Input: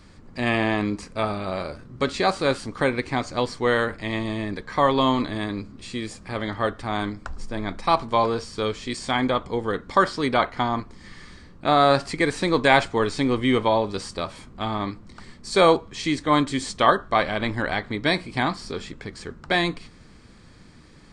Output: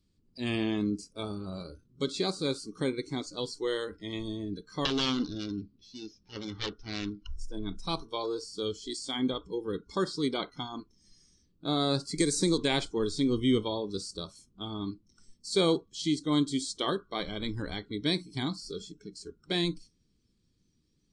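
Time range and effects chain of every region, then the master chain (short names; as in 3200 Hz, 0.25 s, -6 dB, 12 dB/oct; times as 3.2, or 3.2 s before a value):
4.85–7.3 self-modulated delay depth 0.87 ms + LPF 5200 Hz 24 dB/oct
12.18–12.58 resonant high shelf 4600 Hz +9 dB, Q 1.5 + three-band squash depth 100%
whole clip: spectral noise reduction 19 dB; band shelf 1100 Hz -13.5 dB 2.3 oct; gain -3.5 dB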